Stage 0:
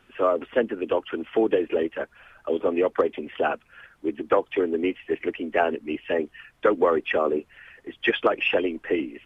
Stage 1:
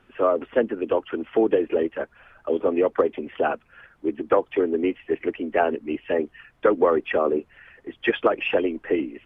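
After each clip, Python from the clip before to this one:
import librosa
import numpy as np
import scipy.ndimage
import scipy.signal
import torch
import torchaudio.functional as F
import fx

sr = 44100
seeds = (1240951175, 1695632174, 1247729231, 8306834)

y = fx.high_shelf(x, sr, hz=2500.0, db=-9.5)
y = y * librosa.db_to_amplitude(2.0)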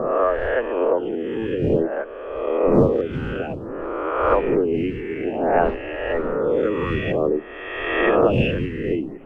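y = fx.spec_swells(x, sr, rise_s=1.66)
y = fx.dmg_wind(y, sr, seeds[0], corner_hz=260.0, level_db=-26.0)
y = fx.stagger_phaser(y, sr, hz=0.55)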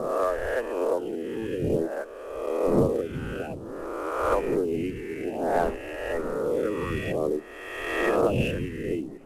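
y = fx.cvsd(x, sr, bps=64000)
y = y * librosa.db_to_amplitude(-6.0)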